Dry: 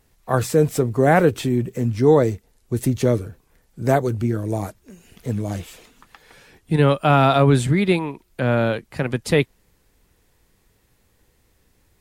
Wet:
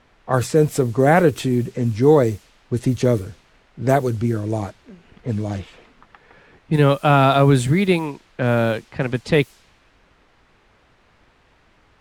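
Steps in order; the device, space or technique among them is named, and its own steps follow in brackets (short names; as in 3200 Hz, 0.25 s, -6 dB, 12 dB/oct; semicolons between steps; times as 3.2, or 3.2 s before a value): cassette deck with a dynamic noise filter (white noise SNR 29 dB; low-pass opened by the level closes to 1900 Hz, open at -15 dBFS); gain +1 dB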